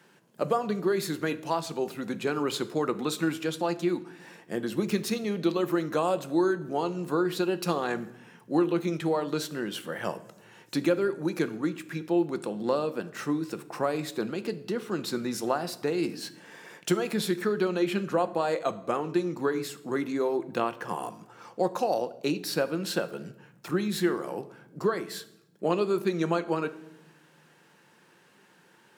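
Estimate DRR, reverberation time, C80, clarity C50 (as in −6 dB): 11.0 dB, 0.85 s, 19.0 dB, 16.5 dB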